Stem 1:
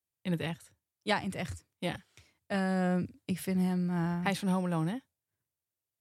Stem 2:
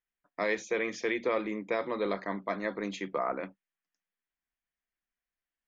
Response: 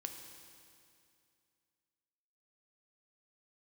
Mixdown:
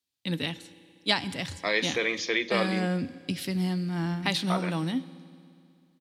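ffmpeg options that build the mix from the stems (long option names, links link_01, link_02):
-filter_complex "[0:a]equalizer=frequency=260:width=4.5:gain=13.5,volume=-3.5dB,asplit=2[link_01][link_02];[link_02]volume=-5.5dB[link_03];[1:a]adelay=1250,volume=-1.5dB,asplit=3[link_04][link_05][link_06];[link_04]atrim=end=2.87,asetpts=PTS-STARTPTS,afade=type=out:start_time=2.866:duration=0.004:curve=hsin[link_07];[link_05]atrim=start=2.87:end=4.5,asetpts=PTS-STARTPTS,volume=0[link_08];[link_06]atrim=start=4.5,asetpts=PTS-STARTPTS,afade=type=in:duration=0.004:curve=hsin[link_09];[link_07][link_08][link_09]concat=n=3:v=0:a=1,asplit=2[link_10][link_11];[link_11]volume=-9dB[link_12];[2:a]atrim=start_sample=2205[link_13];[link_03][link_12]amix=inputs=2:normalize=0[link_14];[link_14][link_13]afir=irnorm=-1:irlink=0[link_15];[link_01][link_10][link_15]amix=inputs=3:normalize=0,equalizer=frequency=4000:width=0.92:gain=14.5"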